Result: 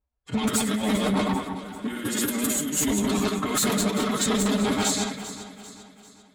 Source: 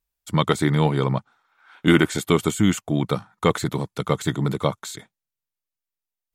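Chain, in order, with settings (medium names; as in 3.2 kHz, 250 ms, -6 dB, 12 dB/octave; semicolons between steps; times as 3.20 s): backward echo that repeats 103 ms, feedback 52%, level -1.5 dB; pre-emphasis filter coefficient 0.8; level-controlled noise filter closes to 850 Hz, open at -27.5 dBFS; dynamic bell 300 Hz, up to +4 dB, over -44 dBFS, Q 3.4; compressor with a negative ratio -33 dBFS, ratio -0.5; sine folder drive 10 dB, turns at -16 dBFS; formant-preserving pitch shift +6 st; comb of notches 170 Hz; echo whose repeats swap between lows and highs 197 ms, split 2 kHz, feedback 67%, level -10 dB; transformer saturation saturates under 350 Hz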